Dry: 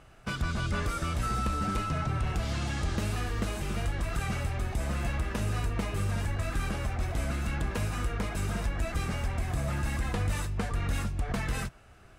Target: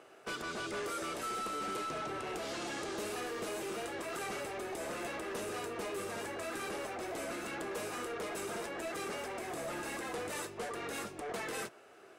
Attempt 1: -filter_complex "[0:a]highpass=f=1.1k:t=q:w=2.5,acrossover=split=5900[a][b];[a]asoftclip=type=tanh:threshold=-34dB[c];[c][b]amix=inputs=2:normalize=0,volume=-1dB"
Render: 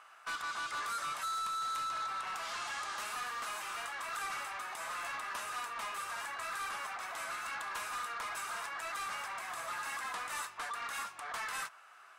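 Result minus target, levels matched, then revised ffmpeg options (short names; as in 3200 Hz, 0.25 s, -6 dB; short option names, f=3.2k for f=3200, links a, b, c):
500 Hz band -14.5 dB
-filter_complex "[0:a]highpass=f=390:t=q:w=2.5,acrossover=split=5900[a][b];[a]asoftclip=type=tanh:threshold=-34dB[c];[c][b]amix=inputs=2:normalize=0,volume=-1dB"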